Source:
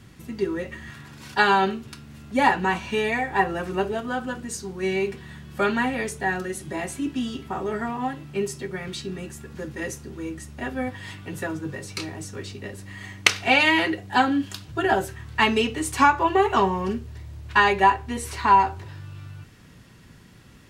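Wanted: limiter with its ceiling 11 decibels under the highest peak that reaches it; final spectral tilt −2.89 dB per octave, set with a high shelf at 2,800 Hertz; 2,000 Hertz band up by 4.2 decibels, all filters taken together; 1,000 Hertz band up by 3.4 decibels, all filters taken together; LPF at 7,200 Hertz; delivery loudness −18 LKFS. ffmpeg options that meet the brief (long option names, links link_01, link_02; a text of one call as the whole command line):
ffmpeg -i in.wav -af "lowpass=7200,equalizer=frequency=1000:width_type=o:gain=3.5,equalizer=frequency=2000:width_type=o:gain=7,highshelf=frequency=2800:gain=-7.5,volume=5.5dB,alimiter=limit=-3.5dB:level=0:latency=1" out.wav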